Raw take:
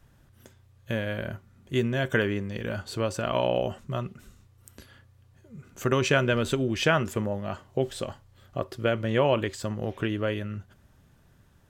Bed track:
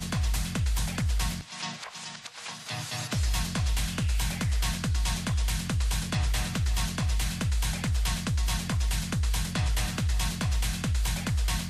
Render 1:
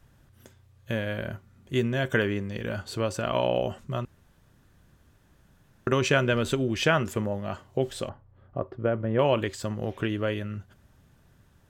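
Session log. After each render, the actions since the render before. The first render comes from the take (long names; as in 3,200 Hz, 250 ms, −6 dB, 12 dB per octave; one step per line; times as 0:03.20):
0:04.05–0:05.87: fill with room tone
0:08.09–0:09.19: low-pass filter 1,200 Hz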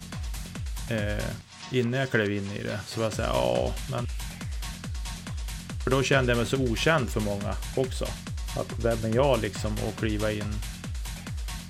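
mix in bed track −7 dB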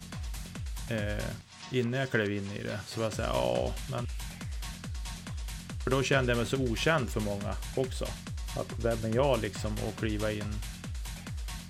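level −4 dB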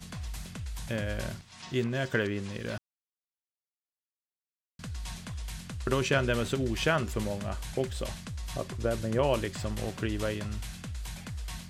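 0:02.78–0:04.79: silence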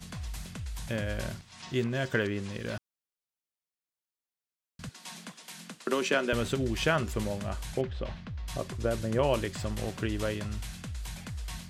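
0:04.89–0:06.33: Butterworth high-pass 180 Hz 48 dB per octave
0:07.81–0:08.48: high-frequency loss of the air 260 metres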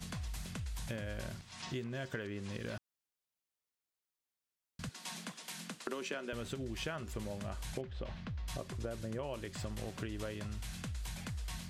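downward compressor 6 to 1, threshold −38 dBFS, peak gain reduction 15.5 dB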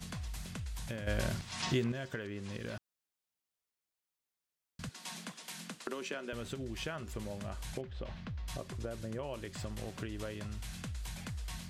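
0:01.07–0:01.92: clip gain +8.5 dB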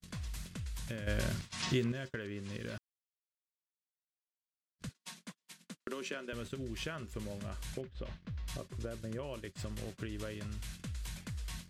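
noise gate −43 dBFS, range −40 dB
parametric band 780 Hz −7 dB 0.58 octaves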